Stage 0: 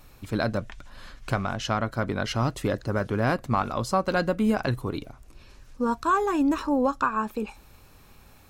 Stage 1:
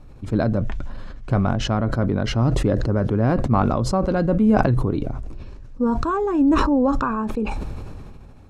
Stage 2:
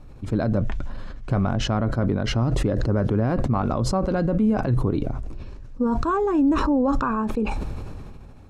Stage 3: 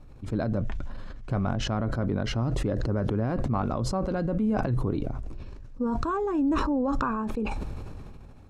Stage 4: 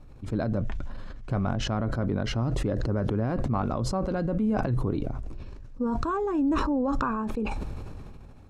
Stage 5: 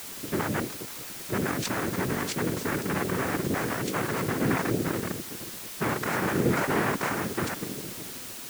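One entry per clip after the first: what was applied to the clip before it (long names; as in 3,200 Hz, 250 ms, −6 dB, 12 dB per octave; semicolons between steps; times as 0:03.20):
Bessel low-pass filter 8,100 Hz, order 4; tilt shelving filter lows +8.5 dB, about 910 Hz; level that may fall only so fast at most 24 dB per second; level −1 dB
brickwall limiter −13.5 dBFS, peak gain reduction 11.5 dB
level that may fall only so fast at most 24 dB per second; level −6 dB
no processing that can be heard
spectral magnitudes quantised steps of 30 dB; cochlear-implant simulation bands 3; background noise white −40 dBFS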